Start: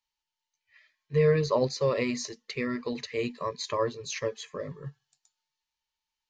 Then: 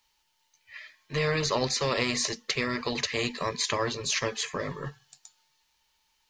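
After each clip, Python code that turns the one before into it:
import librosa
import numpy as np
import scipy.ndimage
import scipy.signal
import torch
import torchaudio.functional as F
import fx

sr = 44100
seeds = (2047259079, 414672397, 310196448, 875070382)

y = fx.spectral_comp(x, sr, ratio=2.0)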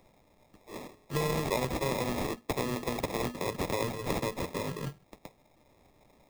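y = fx.sample_hold(x, sr, seeds[0], rate_hz=1500.0, jitter_pct=0)
y = fx.band_squash(y, sr, depth_pct=40)
y = F.gain(torch.from_numpy(y), -3.0).numpy()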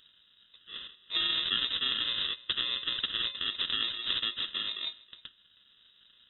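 y = x + 10.0 ** (-22.5 / 20.0) * np.pad(x, (int(317 * sr / 1000.0), 0))[:len(x)]
y = fx.freq_invert(y, sr, carrier_hz=3800)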